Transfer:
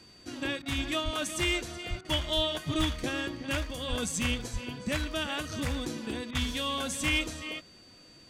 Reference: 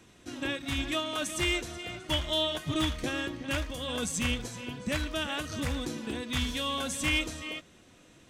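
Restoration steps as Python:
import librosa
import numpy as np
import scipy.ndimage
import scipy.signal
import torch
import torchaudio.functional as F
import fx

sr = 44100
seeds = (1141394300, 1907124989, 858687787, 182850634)

y = fx.notch(x, sr, hz=4600.0, q=30.0)
y = fx.fix_deplosive(y, sr, at_s=(1.04, 1.89, 2.35, 2.77, 3.89, 4.52))
y = fx.fix_interpolate(y, sr, at_s=(0.62, 2.01, 6.31), length_ms=37.0)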